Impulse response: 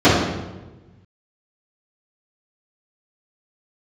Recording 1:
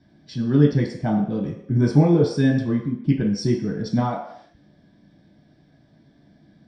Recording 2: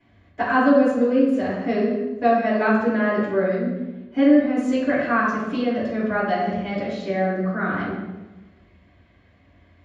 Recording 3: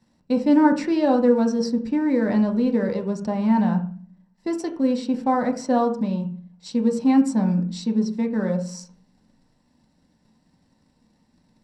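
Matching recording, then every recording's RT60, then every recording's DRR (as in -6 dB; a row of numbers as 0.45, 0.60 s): 2; not exponential, 1.2 s, 0.45 s; -5.0, -15.5, 2.0 dB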